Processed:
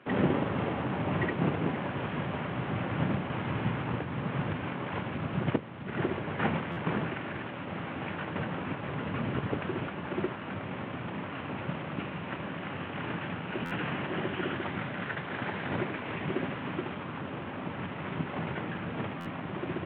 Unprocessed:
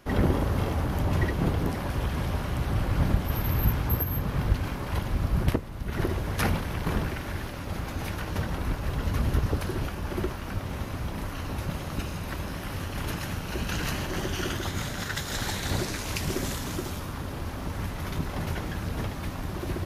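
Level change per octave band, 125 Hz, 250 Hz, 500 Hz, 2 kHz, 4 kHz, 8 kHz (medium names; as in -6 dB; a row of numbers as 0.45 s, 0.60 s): -6.5 dB, -0.5 dB, -0.5 dB, -0.5 dB, -7.0 dB, under -35 dB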